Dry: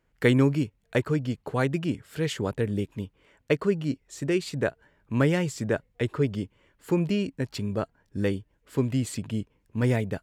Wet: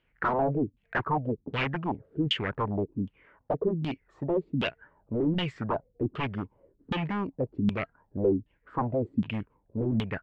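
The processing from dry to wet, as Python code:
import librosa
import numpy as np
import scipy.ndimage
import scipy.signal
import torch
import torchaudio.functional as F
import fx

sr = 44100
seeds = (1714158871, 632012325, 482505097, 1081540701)

y = 10.0 ** (-23.0 / 20.0) * (np.abs((x / 10.0 ** (-23.0 / 20.0) + 3.0) % 4.0 - 2.0) - 1.0)
y = fx.filter_lfo_lowpass(y, sr, shape='saw_down', hz=1.3, low_hz=210.0, high_hz=3300.0, q=4.9)
y = y * 10.0 ** (-2.5 / 20.0)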